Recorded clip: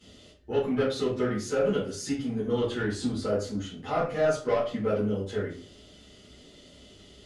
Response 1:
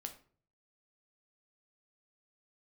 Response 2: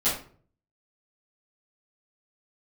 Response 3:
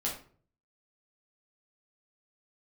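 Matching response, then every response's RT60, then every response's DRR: 2; 0.45, 0.45, 0.45 s; 5.0, -14.0, -4.5 dB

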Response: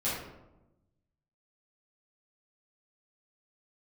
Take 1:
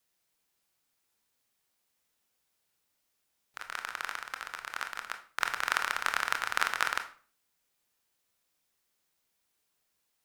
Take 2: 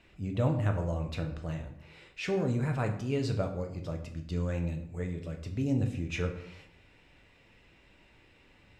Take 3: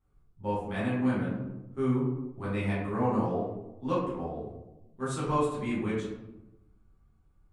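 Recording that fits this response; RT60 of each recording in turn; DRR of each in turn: 3; 0.40, 0.65, 1.0 s; 6.0, 3.0, -10.5 dB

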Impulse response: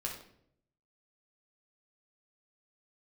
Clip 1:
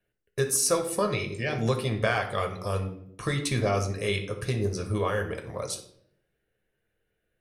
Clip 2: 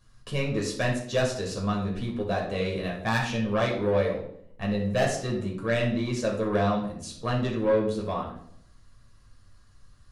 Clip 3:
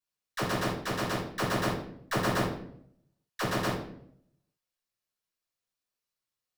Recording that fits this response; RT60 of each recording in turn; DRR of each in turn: 2; 0.65, 0.65, 0.65 s; 4.0, -2.0, -8.0 dB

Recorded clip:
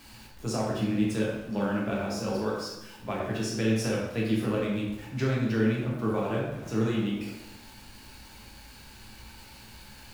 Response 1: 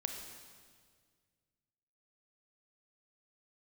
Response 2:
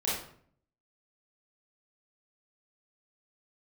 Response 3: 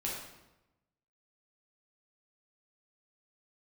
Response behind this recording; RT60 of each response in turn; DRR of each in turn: 3; 1.8, 0.60, 0.95 s; 3.5, -8.5, -5.0 dB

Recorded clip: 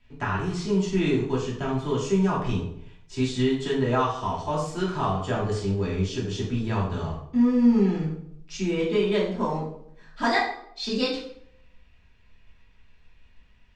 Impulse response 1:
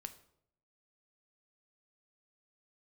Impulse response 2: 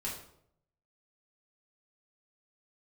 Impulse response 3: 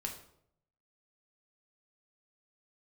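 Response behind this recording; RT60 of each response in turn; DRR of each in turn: 2; 0.70, 0.70, 0.70 s; 8.5, -6.5, 1.0 dB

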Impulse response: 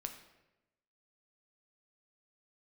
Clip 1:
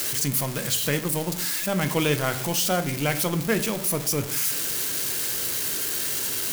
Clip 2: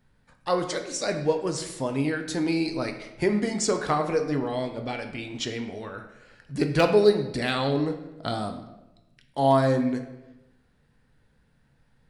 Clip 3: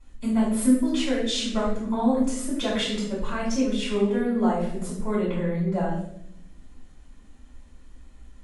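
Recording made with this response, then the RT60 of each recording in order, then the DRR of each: 2; 0.55, 1.0, 0.75 s; 9.0, 5.0, -9.0 dB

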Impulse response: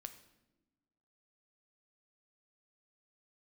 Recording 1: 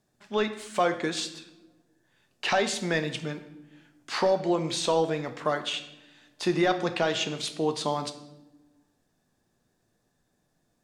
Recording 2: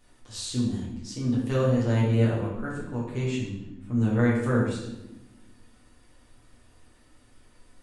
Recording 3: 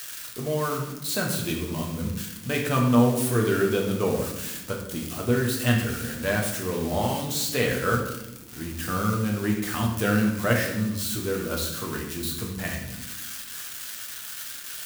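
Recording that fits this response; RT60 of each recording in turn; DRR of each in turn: 1; not exponential, 1.0 s, 1.0 s; 8.0, -6.0, -1.0 dB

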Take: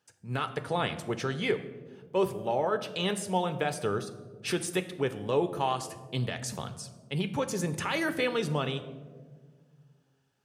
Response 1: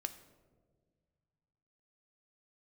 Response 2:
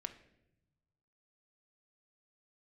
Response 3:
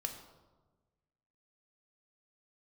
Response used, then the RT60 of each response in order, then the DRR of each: 1; 1.7, 0.85, 1.3 s; 9.0, 6.5, 4.0 dB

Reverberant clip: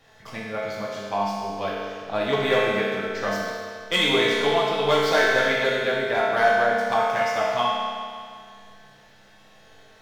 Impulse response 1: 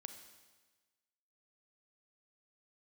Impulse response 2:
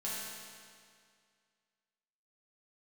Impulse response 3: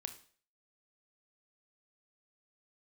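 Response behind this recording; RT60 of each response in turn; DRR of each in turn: 2; 1.3, 2.1, 0.45 s; 7.0, -8.0, 7.5 dB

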